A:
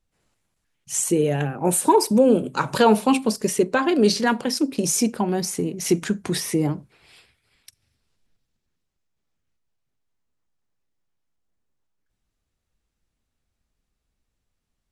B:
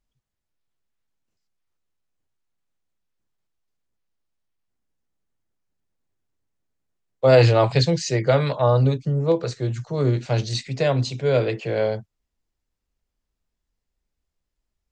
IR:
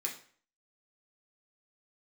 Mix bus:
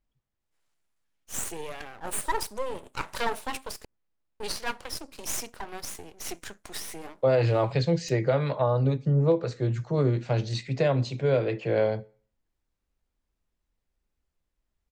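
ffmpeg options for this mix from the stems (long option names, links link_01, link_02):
-filter_complex "[0:a]highpass=670,aeval=exprs='max(val(0),0)':channel_layout=same,adelay=400,volume=-4.5dB,asplit=3[link_01][link_02][link_03];[link_01]atrim=end=3.85,asetpts=PTS-STARTPTS,afade=type=out:start_time=3.846:duration=0.004:curve=hsin[link_04];[link_02]atrim=start=3.85:end=4.4,asetpts=PTS-STARTPTS,volume=0[link_05];[link_03]atrim=start=4.4,asetpts=PTS-STARTPTS,afade=type=in:duration=0.004:curve=hsin[link_06];[link_04][link_05][link_06]concat=n=3:v=0:a=1[link_07];[1:a]highshelf=frequency=3600:gain=-12,alimiter=limit=-14dB:level=0:latency=1:release=457,volume=0dB,asplit=2[link_08][link_09];[link_09]volume=-14.5dB[link_10];[2:a]atrim=start_sample=2205[link_11];[link_10][link_11]afir=irnorm=-1:irlink=0[link_12];[link_07][link_08][link_12]amix=inputs=3:normalize=0"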